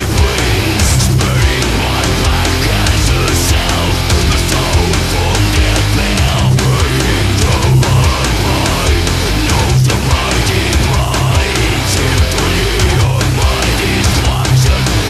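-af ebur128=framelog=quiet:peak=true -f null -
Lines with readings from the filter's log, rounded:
Integrated loudness:
  I:         -11.8 LUFS
  Threshold: -21.8 LUFS
Loudness range:
  LRA:         0.6 LU
  Threshold: -31.8 LUFS
  LRA low:   -12.0 LUFS
  LRA high:  -11.4 LUFS
True peak:
  Peak:       -1.2 dBFS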